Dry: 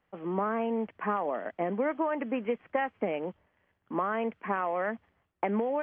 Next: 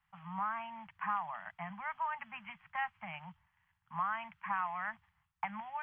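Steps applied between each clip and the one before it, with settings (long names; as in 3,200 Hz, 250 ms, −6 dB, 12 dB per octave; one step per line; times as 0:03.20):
elliptic band-stop filter 160–880 Hz, stop band 50 dB
level −2 dB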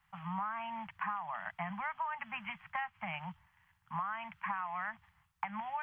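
downward compressor 6 to 1, threshold −41 dBFS, peak gain reduction 11 dB
level +6.5 dB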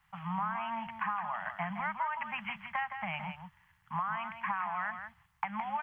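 single-tap delay 166 ms −8 dB
level +3 dB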